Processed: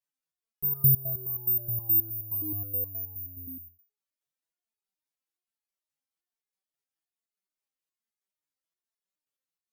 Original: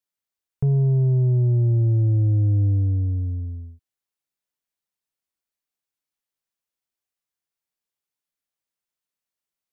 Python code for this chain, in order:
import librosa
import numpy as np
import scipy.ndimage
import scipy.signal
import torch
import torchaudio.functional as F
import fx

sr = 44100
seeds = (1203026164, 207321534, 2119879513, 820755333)

y = (np.kron(x[::3], np.eye(3)[0]) * 3)[:len(x)]
y = fx.cheby_harmonics(y, sr, harmonics=(5,), levels_db=(-25,), full_scale_db=-6.0)
y = fx.resonator_held(y, sr, hz=9.5, low_hz=140.0, high_hz=420.0)